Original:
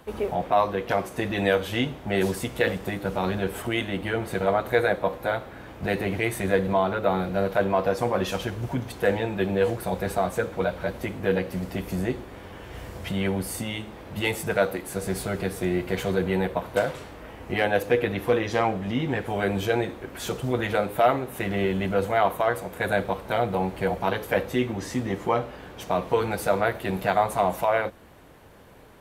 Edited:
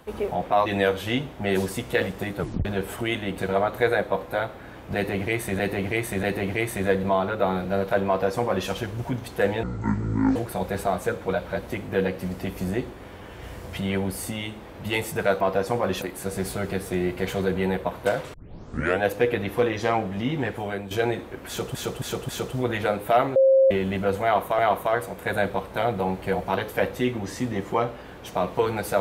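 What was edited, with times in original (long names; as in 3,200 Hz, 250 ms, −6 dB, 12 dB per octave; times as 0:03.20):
0:00.66–0:01.32: remove
0:03.05: tape stop 0.26 s
0:04.04–0:04.30: remove
0:05.87–0:06.51: repeat, 3 plays
0:07.72–0:08.33: duplicate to 0:14.72
0:09.27–0:09.67: play speed 55%
0:17.04: tape start 0.68 s
0:19.21–0:19.61: fade out, to −13 dB
0:20.18–0:20.45: repeat, 4 plays
0:21.25–0:21.60: beep over 534 Hz −13 dBFS
0:22.13–0:22.48: repeat, 2 plays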